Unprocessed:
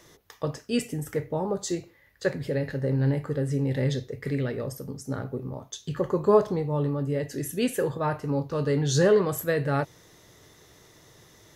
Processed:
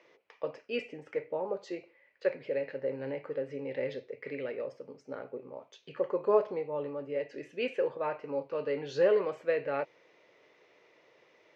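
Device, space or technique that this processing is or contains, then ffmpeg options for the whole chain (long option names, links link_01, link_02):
phone earpiece: -af "highpass=450,equalizer=frequency=530:width_type=q:width=4:gain=6,equalizer=frequency=770:width_type=q:width=4:gain=-3,equalizer=frequency=1200:width_type=q:width=4:gain=-4,equalizer=frequency=1700:width_type=q:width=4:gain=-5,equalizer=frequency=2400:width_type=q:width=4:gain=8,equalizer=frequency=3600:width_type=q:width=4:gain=-10,lowpass=frequency=3700:width=0.5412,lowpass=frequency=3700:width=1.3066,volume=-4dB"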